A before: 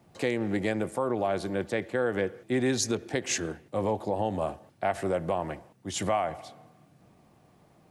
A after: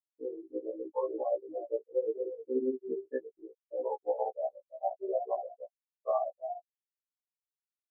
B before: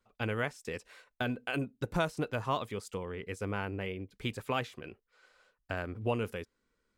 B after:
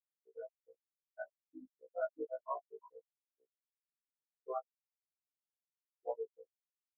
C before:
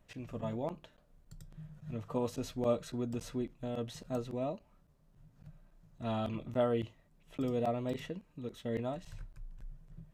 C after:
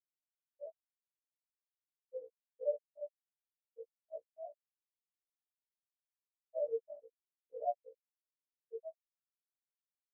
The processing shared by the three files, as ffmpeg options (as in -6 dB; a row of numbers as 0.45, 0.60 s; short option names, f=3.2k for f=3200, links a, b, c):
-af "adynamicsmooth=sensitivity=2:basefreq=600,highpass=400,aecho=1:1:322|644|966:0.422|0.101|0.0243,afftfilt=real='re*gte(hypot(re,im),0.126)':imag='im*gte(hypot(re,im),0.126)':win_size=1024:overlap=0.75,tremolo=f=17:d=0.97,afftfilt=real='re*1.73*eq(mod(b,3),0)':imag='im*1.73*eq(mod(b,3),0)':win_size=2048:overlap=0.75,volume=5.5dB"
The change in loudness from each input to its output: -5.5, -9.0, -6.5 LU